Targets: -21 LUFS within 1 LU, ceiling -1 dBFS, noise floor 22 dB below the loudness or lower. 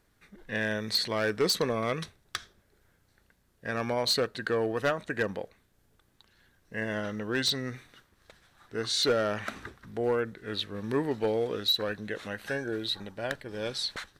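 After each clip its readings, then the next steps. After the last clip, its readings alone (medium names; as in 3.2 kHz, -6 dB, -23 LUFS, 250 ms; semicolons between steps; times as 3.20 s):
clipped samples 0.4%; clipping level -20.0 dBFS; loudness -30.5 LUFS; peak level -20.0 dBFS; loudness target -21.0 LUFS
-> clip repair -20 dBFS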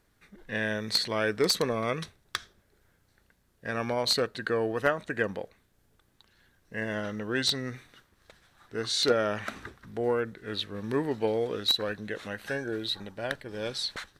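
clipped samples 0.0%; loudness -30.0 LUFS; peak level -11.0 dBFS; loudness target -21.0 LUFS
-> trim +9 dB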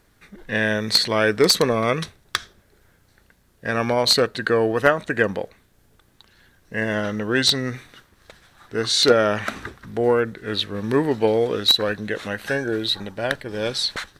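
loudness -21.0 LUFS; peak level -2.0 dBFS; noise floor -60 dBFS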